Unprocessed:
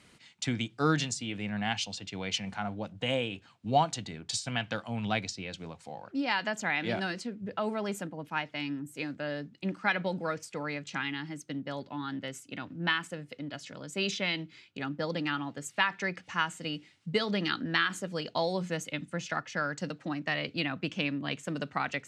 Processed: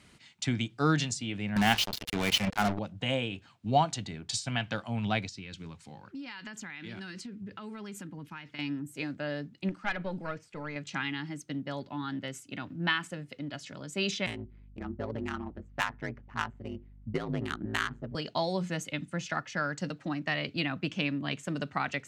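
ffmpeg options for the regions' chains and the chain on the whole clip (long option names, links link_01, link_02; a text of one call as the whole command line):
ffmpeg -i in.wav -filter_complex "[0:a]asettb=1/sr,asplit=3[link_01][link_02][link_03];[link_01]atrim=end=1.564[link_04];[link_02]atrim=start=1.56:end=2.79,asetpts=PTS-STARTPTS,afade=type=in:duration=0.004:curve=qsin,afade=type=out:start_time=1.226:duration=0.004:curve=qsin,acontrast=72,highpass=120,lowpass=4800,acrusher=bits=4:mix=0:aa=0.5[link_05];[link_03]atrim=start=2.786[link_06];[link_04][link_05]acrossfade=duration=0.004:curve1=hsin:curve2=qsin[link_07];[link_07][link_06]acrossfade=duration=0.004:curve1=qsin:curve2=hsin,asettb=1/sr,asplit=3[link_08][link_09][link_10];[link_08]atrim=end=5.274[link_11];[link_09]atrim=start=5.27:end=8.59,asetpts=PTS-STARTPTS,afade=type=in:duration=0.004:curve=qsin,afade=type=out:start_time=3.316:duration=0.004:curve=qsin,equalizer=frequency=660:width_type=o:width=0.71:gain=-14.5,acompressor=threshold=-39dB:ratio=6:attack=3.2:release=140:knee=1:detection=peak[link_12];[link_10]atrim=start=8.586[link_13];[link_11][link_12]acrossfade=duration=0.004:curve1=hsin:curve2=qsin[link_14];[link_14][link_13]acrossfade=duration=0.004:curve1=qsin:curve2=hsin,asettb=1/sr,asplit=3[link_15][link_16][link_17];[link_15]atrim=end=9.694[link_18];[link_16]atrim=start=9.69:end=10.76,asetpts=PTS-STARTPTS,afade=type=in:duration=0.004:curve=qsin,afade=type=out:start_time=1.066:duration=0.004:curve=qsin,acrossover=split=3000[link_19][link_20];[link_20]acompressor=threshold=-58dB:ratio=4:attack=1:release=60[link_21];[link_19][link_21]amix=inputs=2:normalize=0,aeval=exprs='(tanh(10*val(0)+0.65)-tanh(0.65))/10':channel_layout=same[link_22];[link_17]atrim=start=10.756[link_23];[link_18][link_22]acrossfade=duration=0.004:curve1=hsin:curve2=qsin[link_24];[link_24][link_23]acrossfade=duration=0.004:curve1=qsin:curve2=hsin,asettb=1/sr,asplit=3[link_25][link_26][link_27];[link_25]atrim=end=14.264[link_28];[link_26]atrim=start=14.26:end=18.15,asetpts=PTS-STARTPTS,afade=type=in:duration=0.004:curve=qsin,afade=type=out:start_time=3.886:duration=0.004:curve=qsin,adynamicsmooth=sensitivity=1.5:basefreq=810,aeval=exprs='val(0)*sin(2*PI*55*n/s)':channel_layout=same,aeval=exprs='val(0)+0.00158*(sin(2*PI*50*n/s)+sin(2*PI*2*50*n/s)/2+sin(2*PI*3*50*n/s)/3+sin(2*PI*4*50*n/s)/4+sin(2*PI*5*50*n/s)/5)':channel_layout=same[link_29];[link_27]atrim=start=18.146[link_30];[link_28][link_29]acrossfade=duration=0.004:curve1=hsin:curve2=qsin[link_31];[link_31][link_30]acrossfade=duration=0.004:curve1=qsin:curve2=hsin,lowshelf=frequency=110:gain=6.5,bandreject=frequency=490:width=12" out.wav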